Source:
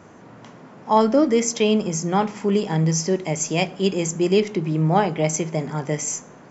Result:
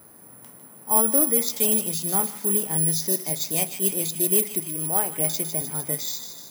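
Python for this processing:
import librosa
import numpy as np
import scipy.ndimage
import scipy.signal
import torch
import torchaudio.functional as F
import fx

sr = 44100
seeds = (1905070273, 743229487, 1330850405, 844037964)

y = fx.peak_eq(x, sr, hz=98.0, db=-9.0, octaves=2.9, at=(4.6, 5.17))
y = fx.echo_wet_highpass(y, sr, ms=152, feedback_pct=59, hz=1700.0, wet_db=-8.0)
y = (np.kron(y[::4], np.eye(4)[0]) * 4)[:len(y)]
y = F.gain(torch.from_numpy(y), -9.0).numpy()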